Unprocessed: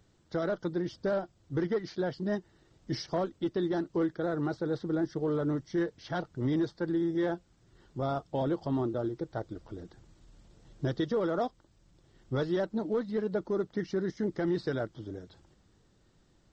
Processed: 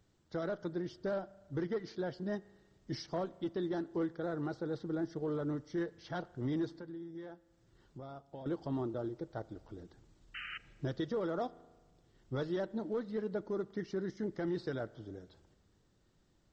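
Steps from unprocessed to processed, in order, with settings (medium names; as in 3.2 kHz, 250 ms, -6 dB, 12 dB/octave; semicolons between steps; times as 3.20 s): 6.72–8.46 s: compression 3:1, threshold -42 dBFS, peak gain reduction 12 dB; 10.34–10.58 s: painted sound noise 1.2–3.1 kHz -38 dBFS; spring tank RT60 1.4 s, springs 36 ms, chirp 60 ms, DRR 19.5 dB; trim -6 dB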